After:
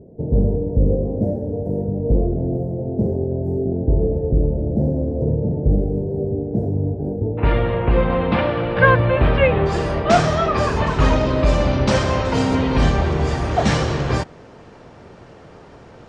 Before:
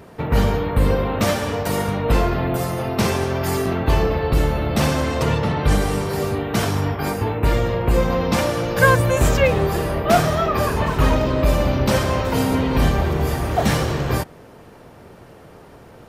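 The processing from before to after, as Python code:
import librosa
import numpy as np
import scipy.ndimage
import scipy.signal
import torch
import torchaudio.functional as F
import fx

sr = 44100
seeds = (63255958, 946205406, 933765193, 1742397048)

y = fx.cheby2_lowpass(x, sr, hz=fx.steps((0.0, 1100.0), (7.37, 6200.0), (9.65, 12000.0)), order=4, stop_db=40)
y = y * 10.0 ** (1.0 / 20.0)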